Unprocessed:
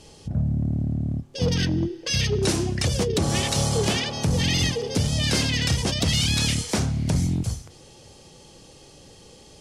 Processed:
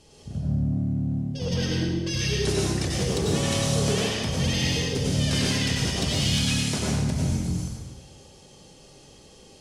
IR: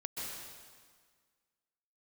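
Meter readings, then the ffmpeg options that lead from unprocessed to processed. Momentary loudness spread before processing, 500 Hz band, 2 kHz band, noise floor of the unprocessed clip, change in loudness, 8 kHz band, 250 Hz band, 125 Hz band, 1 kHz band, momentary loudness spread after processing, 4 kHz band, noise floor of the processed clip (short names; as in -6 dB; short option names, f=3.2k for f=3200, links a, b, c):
5 LU, -1.0 dB, -1.5 dB, -49 dBFS, -1.5 dB, -1.5 dB, -0.5 dB, -1.5 dB, -2.5 dB, 6 LU, -2.0 dB, -51 dBFS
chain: -filter_complex "[1:a]atrim=start_sample=2205,asetrate=61740,aresample=44100[a];[0:a][a]afir=irnorm=-1:irlink=0"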